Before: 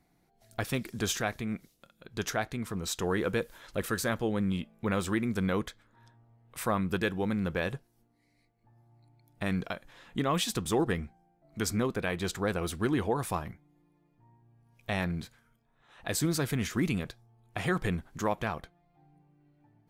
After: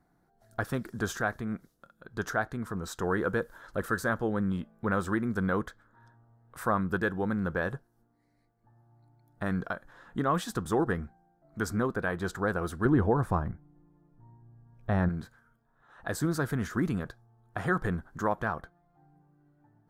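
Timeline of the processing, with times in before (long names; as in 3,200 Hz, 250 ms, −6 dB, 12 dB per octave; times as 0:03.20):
0:12.85–0:15.09: spectral tilt −2.5 dB per octave
whole clip: high shelf with overshoot 1,900 Hz −7 dB, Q 3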